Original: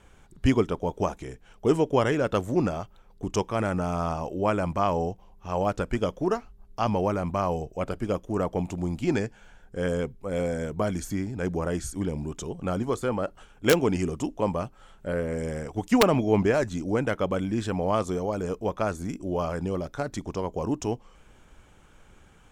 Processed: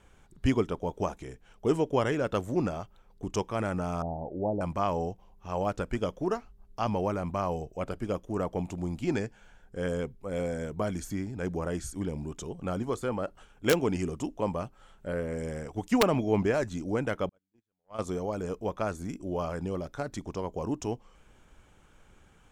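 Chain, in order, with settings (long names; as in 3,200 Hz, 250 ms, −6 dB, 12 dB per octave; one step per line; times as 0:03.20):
0:04.02–0:04.61: Chebyshev low-pass filter 860 Hz, order 6
0:17.29–0:17.99: noise gate −20 dBFS, range −56 dB
level −4 dB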